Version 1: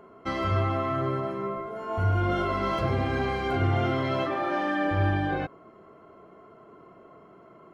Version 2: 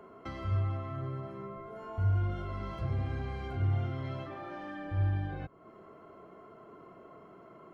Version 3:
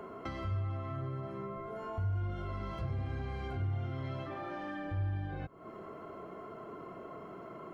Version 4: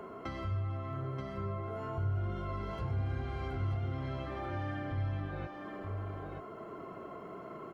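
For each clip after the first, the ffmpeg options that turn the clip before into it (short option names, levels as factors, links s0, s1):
-filter_complex "[0:a]acrossover=split=140[s0][s1];[s1]acompressor=threshold=0.00794:ratio=4[s2];[s0][s2]amix=inputs=2:normalize=0,volume=0.841"
-af "acompressor=threshold=0.00355:ratio=2,volume=2.24"
-af "aecho=1:1:930:0.531"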